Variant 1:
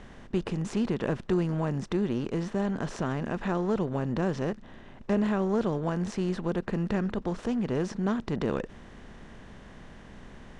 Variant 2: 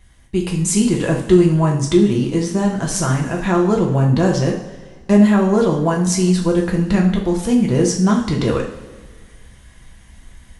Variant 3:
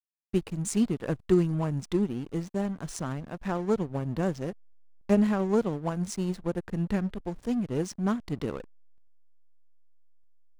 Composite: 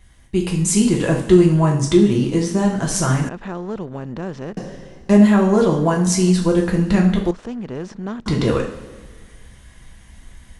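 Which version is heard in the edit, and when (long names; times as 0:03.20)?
2
0:03.29–0:04.57: punch in from 1
0:07.31–0:08.26: punch in from 1
not used: 3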